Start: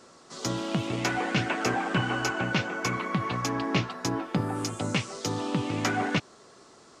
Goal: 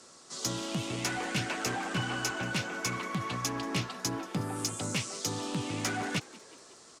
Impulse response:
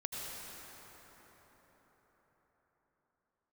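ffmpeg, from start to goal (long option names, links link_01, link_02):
-filter_complex "[0:a]acrossover=split=200[link_01][link_02];[link_02]asoftclip=type=tanh:threshold=-24.5dB[link_03];[link_01][link_03]amix=inputs=2:normalize=0,lowpass=11000,aemphasis=mode=production:type=75kf,asplit=6[link_04][link_05][link_06][link_07][link_08][link_09];[link_05]adelay=183,afreqshift=70,volume=-21dB[link_10];[link_06]adelay=366,afreqshift=140,volume=-25.4dB[link_11];[link_07]adelay=549,afreqshift=210,volume=-29.9dB[link_12];[link_08]adelay=732,afreqshift=280,volume=-34.3dB[link_13];[link_09]adelay=915,afreqshift=350,volume=-38.7dB[link_14];[link_04][link_10][link_11][link_12][link_13][link_14]amix=inputs=6:normalize=0,volume=-5dB"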